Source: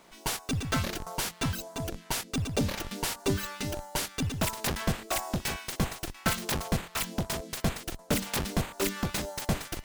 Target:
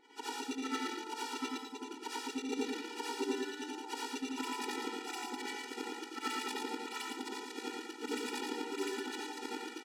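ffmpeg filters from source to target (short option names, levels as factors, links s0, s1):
-filter_complex "[0:a]afftfilt=real='re':imag='-im':win_size=8192:overlap=0.75,adynamicsmooth=sensitivity=6:basefreq=5400,asplit=2[s0][s1];[s1]aecho=0:1:112:0.631[s2];[s0][s2]amix=inputs=2:normalize=0,afftfilt=real='re*eq(mod(floor(b*sr/1024/250),2),1)':imag='im*eq(mod(floor(b*sr/1024/250),2),1)':win_size=1024:overlap=0.75,volume=1.12"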